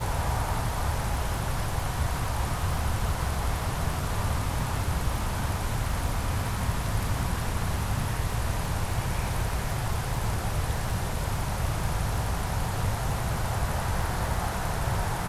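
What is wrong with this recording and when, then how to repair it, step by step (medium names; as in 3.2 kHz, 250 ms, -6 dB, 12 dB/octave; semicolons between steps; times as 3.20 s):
crackle 44 per s -35 dBFS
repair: de-click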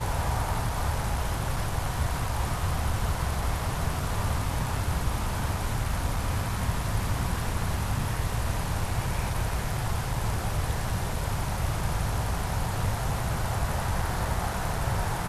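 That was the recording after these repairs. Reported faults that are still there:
nothing left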